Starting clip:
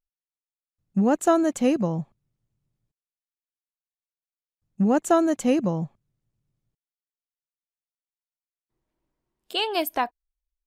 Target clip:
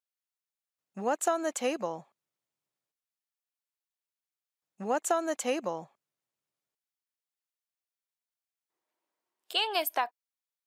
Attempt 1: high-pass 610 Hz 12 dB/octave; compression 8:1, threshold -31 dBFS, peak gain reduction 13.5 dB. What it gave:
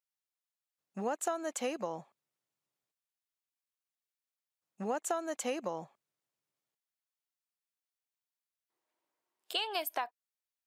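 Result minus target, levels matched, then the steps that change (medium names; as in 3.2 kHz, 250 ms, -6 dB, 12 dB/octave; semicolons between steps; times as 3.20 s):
compression: peak gain reduction +6.5 dB
change: compression 8:1, threshold -23.5 dBFS, peak gain reduction 7 dB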